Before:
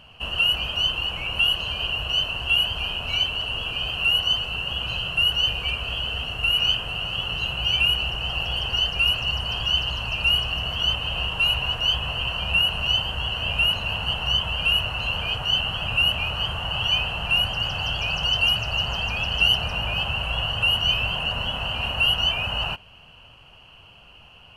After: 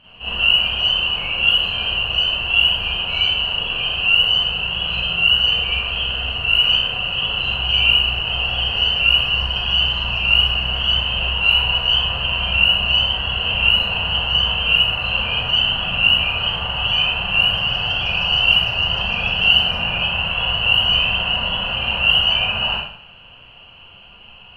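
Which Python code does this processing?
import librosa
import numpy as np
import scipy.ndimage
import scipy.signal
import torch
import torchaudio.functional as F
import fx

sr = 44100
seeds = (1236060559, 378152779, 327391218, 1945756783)

y = fx.high_shelf_res(x, sr, hz=4400.0, db=-11.0, q=1.5)
y = fx.rev_schroeder(y, sr, rt60_s=0.58, comb_ms=32, drr_db=-9.0)
y = y * 10.0 ** (-5.5 / 20.0)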